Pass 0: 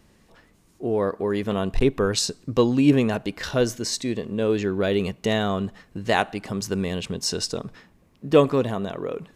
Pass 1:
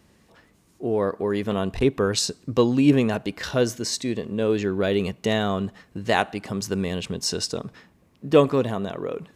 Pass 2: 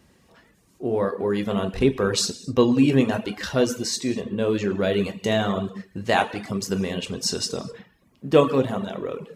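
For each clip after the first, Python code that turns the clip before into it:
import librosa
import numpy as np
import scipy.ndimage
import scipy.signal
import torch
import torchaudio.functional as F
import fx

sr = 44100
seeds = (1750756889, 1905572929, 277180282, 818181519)

y1 = scipy.signal.sosfilt(scipy.signal.butter(2, 52.0, 'highpass', fs=sr, output='sos'), x)
y2 = fx.rev_gated(y1, sr, seeds[0], gate_ms=290, shape='falling', drr_db=3.5)
y2 = fx.dereverb_blind(y2, sr, rt60_s=0.51)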